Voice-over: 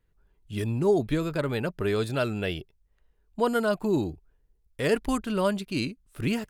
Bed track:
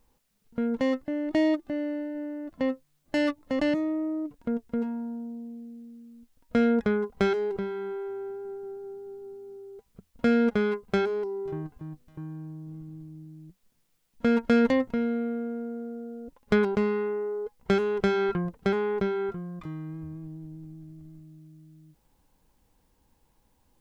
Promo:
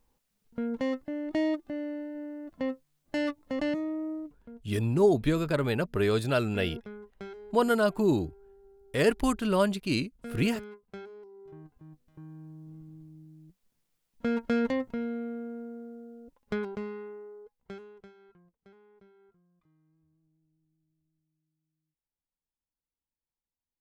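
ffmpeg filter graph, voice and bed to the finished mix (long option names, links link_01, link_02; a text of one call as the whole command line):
ffmpeg -i stem1.wav -i stem2.wav -filter_complex "[0:a]adelay=4150,volume=0.5dB[link_01];[1:a]volume=8dB,afade=type=out:start_time=4.12:duration=0.34:silence=0.199526,afade=type=in:start_time=11.31:duration=1.31:silence=0.237137,afade=type=out:start_time=15.59:duration=2.55:silence=0.0473151[link_02];[link_01][link_02]amix=inputs=2:normalize=0" out.wav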